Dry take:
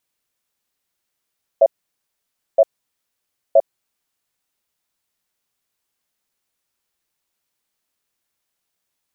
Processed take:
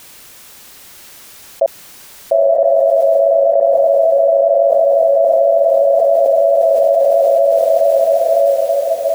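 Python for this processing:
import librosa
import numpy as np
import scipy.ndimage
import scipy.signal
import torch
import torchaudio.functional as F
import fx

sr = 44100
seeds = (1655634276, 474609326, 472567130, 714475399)

y = fx.echo_diffused(x, sr, ms=948, feedback_pct=54, wet_db=-7.5)
y = fx.env_flatten(y, sr, amount_pct=100)
y = y * librosa.db_to_amplitude(-1.5)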